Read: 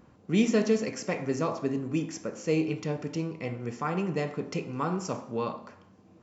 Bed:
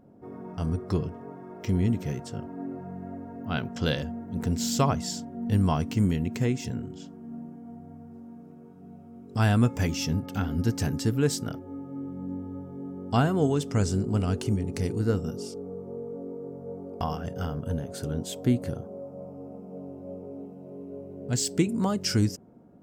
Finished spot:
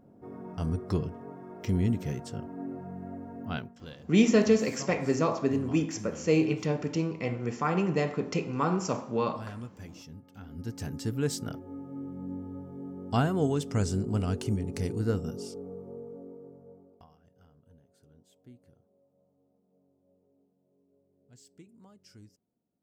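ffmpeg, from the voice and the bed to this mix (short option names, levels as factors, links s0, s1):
-filter_complex "[0:a]adelay=3800,volume=1.33[s0];[1:a]volume=5.31,afade=t=out:st=3.44:d=0.32:silence=0.133352,afade=t=in:st=10.37:d=1.16:silence=0.149624,afade=t=out:st=15.58:d=1.49:silence=0.0473151[s1];[s0][s1]amix=inputs=2:normalize=0"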